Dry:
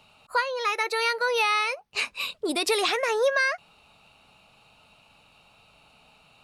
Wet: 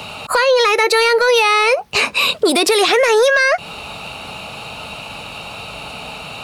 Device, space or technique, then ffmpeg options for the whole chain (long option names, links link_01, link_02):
mastering chain: -filter_complex "[0:a]highpass=41,equalizer=frequency=480:width_type=o:width=0.77:gain=2.5,acrossover=split=680|1500[link_01][link_02][link_03];[link_01]acompressor=threshold=-34dB:ratio=4[link_04];[link_02]acompressor=threshold=-42dB:ratio=4[link_05];[link_03]acompressor=threshold=-34dB:ratio=4[link_06];[link_04][link_05][link_06]amix=inputs=3:normalize=0,acompressor=threshold=-36dB:ratio=1.5,asoftclip=type=tanh:threshold=-26dB,alimiter=level_in=33dB:limit=-1dB:release=50:level=0:latency=1,asettb=1/sr,asplit=3[link_07][link_08][link_09];[link_07]atrim=end=2.074[link_10];[link_08]atrim=start=2.07:end=2.99,asetpts=PTS-STARTPTS,afade=type=in:duration=0.004:curve=qsin,afade=type=out:start_time=0.916:duration=0.004:curve=qsin,highpass=100[link_11];[link_09]atrim=start=2.986[link_12];[link_10][link_11]acrossfade=duration=0.004:curve1=hsin:curve2=qsin[link_13];[link_13][link_12]acrossfade=duration=0.004:curve1=qsin:curve2=hsin,volume=-6dB"